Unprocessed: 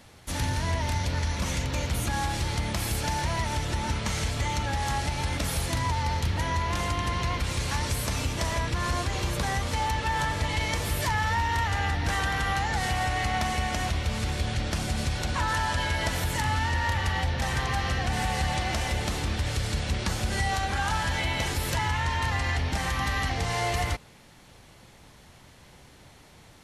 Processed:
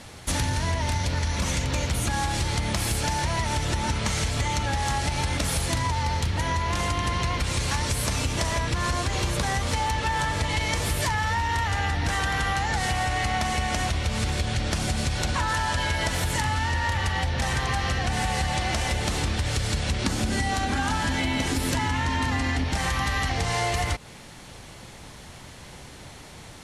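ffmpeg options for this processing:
-filter_complex "[0:a]asettb=1/sr,asplit=3[a][b][c];[a]atrim=end=20.044[d];[b]atrim=start=20.04:end=22.64,asetpts=PTS-STARTPTS,afade=t=in:d=0.004:c=qsin,afade=t=out:st=2.596:d=0.004:c=qsin,equalizer=f=260:t=o:w=0.52:g=14[e];[c]atrim=start=22.636[f];[d][e]acrossfade=d=0.004:c1=hsin:c2=qsin[g];[g][f]acrossfade=d=0.004:c1=qsin:c2=hsin,lowpass=f=11k:w=0.5412,lowpass=f=11k:w=1.3066,highshelf=f=7.6k:g=4.5,acompressor=threshold=-31dB:ratio=6,volume=8.5dB"

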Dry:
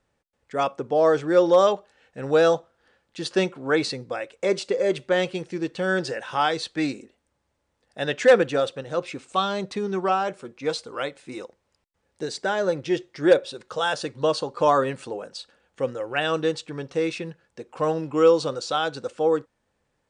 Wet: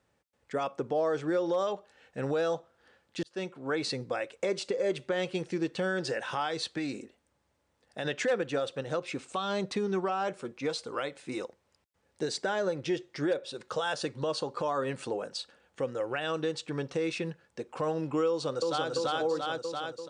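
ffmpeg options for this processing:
-filter_complex "[0:a]asplit=3[a][b][c];[a]afade=t=out:st=6.67:d=0.02[d];[b]acompressor=threshold=-29dB:ratio=6:attack=3.2:release=140:knee=1:detection=peak,afade=t=in:st=6.67:d=0.02,afade=t=out:st=8.04:d=0.02[e];[c]afade=t=in:st=8.04:d=0.02[f];[d][e][f]amix=inputs=3:normalize=0,asplit=2[g][h];[h]afade=t=in:st=18.28:d=0.01,afade=t=out:st=18.9:d=0.01,aecho=0:1:340|680|1020|1360|1700|2040|2380:1|0.5|0.25|0.125|0.0625|0.03125|0.015625[i];[g][i]amix=inputs=2:normalize=0,asplit=2[j][k];[j]atrim=end=3.23,asetpts=PTS-STARTPTS,afade=t=out:st=3.226:d=0.004:c=hsin[l];[k]atrim=start=3.23,asetpts=PTS-STARTPTS,afade=t=in:d=0.81[m];[l][m]concat=n=2:v=0:a=1,acompressor=threshold=-29dB:ratio=2,alimiter=limit=-21dB:level=0:latency=1:release=122,highpass=58"

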